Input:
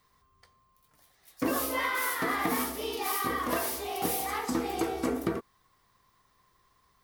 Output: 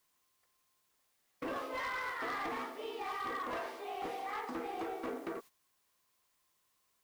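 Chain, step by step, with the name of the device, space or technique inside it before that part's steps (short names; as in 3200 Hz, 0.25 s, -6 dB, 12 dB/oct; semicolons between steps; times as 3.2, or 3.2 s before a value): aircraft radio (BPF 380–2400 Hz; hard clip -29.5 dBFS, distortion -13 dB; white noise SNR 23 dB; gate -47 dBFS, range -12 dB); gain -5 dB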